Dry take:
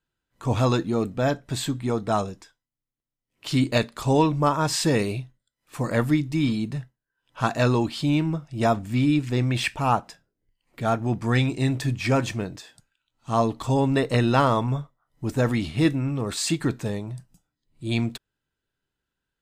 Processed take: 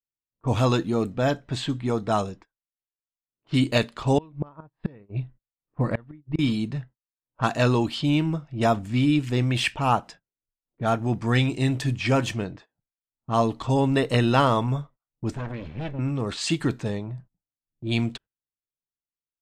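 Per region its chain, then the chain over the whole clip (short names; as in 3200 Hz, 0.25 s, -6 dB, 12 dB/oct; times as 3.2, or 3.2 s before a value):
4.18–6.39 low shelf 170 Hz +6 dB + flipped gate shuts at -13 dBFS, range -28 dB + running mean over 7 samples
15.35–15.99 minimum comb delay 1.2 ms + compressor 2.5:1, threshold -32 dBFS
whole clip: low-pass opened by the level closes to 600 Hz, open at -21 dBFS; gate -45 dBFS, range -22 dB; dynamic EQ 3000 Hz, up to +7 dB, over -52 dBFS, Q 6.7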